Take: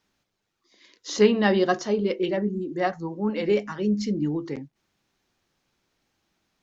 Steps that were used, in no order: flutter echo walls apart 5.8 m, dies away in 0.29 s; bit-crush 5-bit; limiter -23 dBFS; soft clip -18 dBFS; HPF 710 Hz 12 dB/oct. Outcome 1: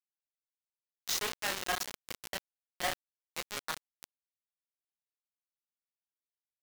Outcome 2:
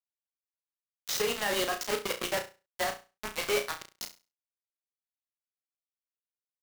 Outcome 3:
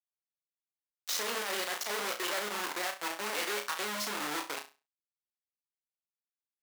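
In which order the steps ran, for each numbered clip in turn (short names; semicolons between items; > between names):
flutter echo > soft clip > limiter > HPF > bit-crush; HPF > soft clip > bit-crush > limiter > flutter echo; limiter > bit-crush > flutter echo > soft clip > HPF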